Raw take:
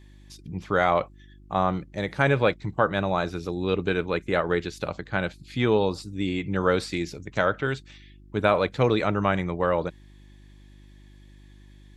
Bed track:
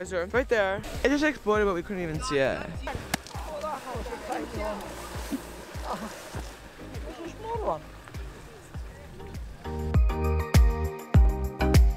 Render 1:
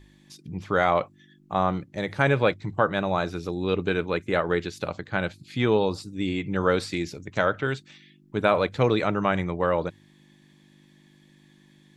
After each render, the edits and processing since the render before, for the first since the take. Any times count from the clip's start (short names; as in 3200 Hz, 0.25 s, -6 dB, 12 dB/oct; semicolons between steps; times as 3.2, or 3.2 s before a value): de-hum 50 Hz, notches 2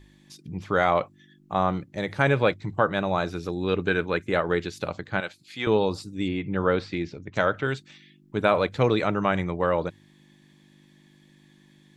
3.41–4.27 bell 1600 Hz +6 dB 0.37 oct; 5.2–5.67 HPF 820 Hz 6 dB/oct; 6.28–7.34 air absorption 190 m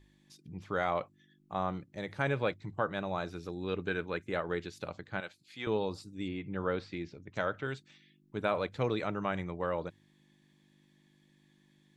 gain -10 dB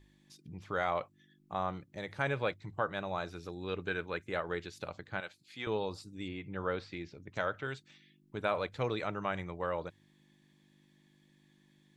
dynamic EQ 230 Hz, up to -5 dB, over -46 dBFS, Q 0.72